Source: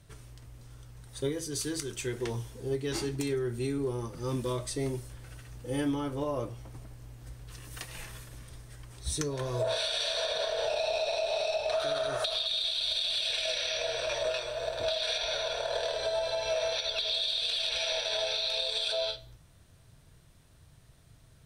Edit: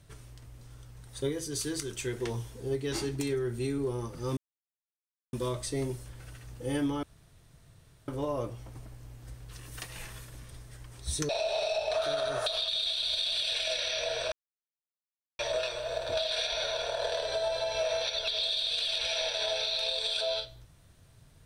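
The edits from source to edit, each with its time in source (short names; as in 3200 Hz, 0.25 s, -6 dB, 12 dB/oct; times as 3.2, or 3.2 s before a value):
4.37 insert silence 0.96 s
6.07 insert room tone 1.05 s
9.28–11.07 cut
14.1 insert silence 1.07 s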